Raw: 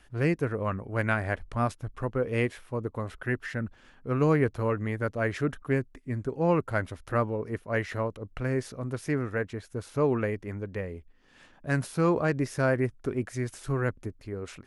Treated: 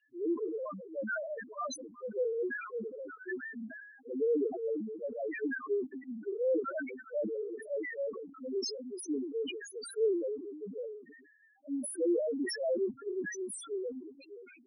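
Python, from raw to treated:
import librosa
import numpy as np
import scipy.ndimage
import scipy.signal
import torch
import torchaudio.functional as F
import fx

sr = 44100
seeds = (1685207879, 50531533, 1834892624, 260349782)

y = fx.fade_out_tail(x, sr, length_s=0.89)
y = scipy.signal.sosfilt(scipy.signal.butter(4, 240.0, 'highpass', fs=sr, output='sos'), y)
y = fx.spec_topn(y, sr, count=1)
y = fx.high_shelf(y, sr, hz=4600.0, db=5.5)
y = fx.sustainer(y, sr, db_per_s=54.0)
y = y * librosa.db_to_amplitude(2.5)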